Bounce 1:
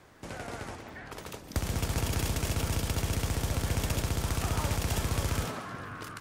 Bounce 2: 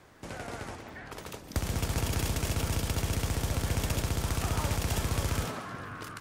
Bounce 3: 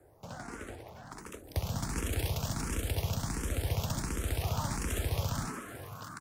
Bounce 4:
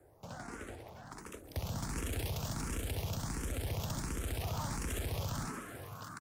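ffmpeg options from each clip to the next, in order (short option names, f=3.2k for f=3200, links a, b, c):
-af anull
-filter_complex "[0:a]acrossover=split=160|1400|6400[a][b][c][d];[c]aeval=exprs='sgn(val(0))*max(abs(val(0))-0.00141,0)':c=same[e];[d]aecho=1:1:574|1148|1722|2296|2870:0.316|0.155|0.0759|0.0372|0.0182[f];[a][b][e][f]amix=inputs=4:normalize=0,asplit=2[g][h];[h]afreqshift=1.4[i];[g][i]amix=inputs=2:normalize=1"
-af "asoftclip=type=tanh:threshold=-28dB,aecho=1:1:193:0.0944,volume=-2dB"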